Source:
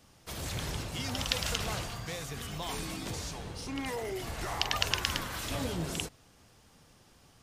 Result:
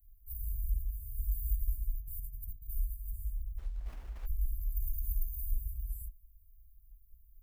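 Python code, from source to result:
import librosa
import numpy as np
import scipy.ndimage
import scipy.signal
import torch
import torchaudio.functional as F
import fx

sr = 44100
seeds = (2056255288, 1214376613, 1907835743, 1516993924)

y = fx.dmg_tone(x, sr, hz=6400.0, level_db=-37.0, at=(4.8, 5.41), fade=0.02)
y = fx.dynamic_eq(y, sr, hz=7700.0, q=1.3, threshold_db=-53.0, ratio=4.0, max_db=8)
y = scipy.signal.sosfilt(scipy.signal.cheby2(4, 70, [190.0, 6000.0], 'bandstop', fs=sr, output='sos'), y)
y = fx.over_compress(y, sr, threshold_db=-58.0, ratio=-0.5, at=(2.0, 2.68), fade=0.02)
y = fx.running_max(y, sr, window=9, at=(3.57, 4.25), fade=0.02)
y = y * 10.0 ** (16.5 / 20.0)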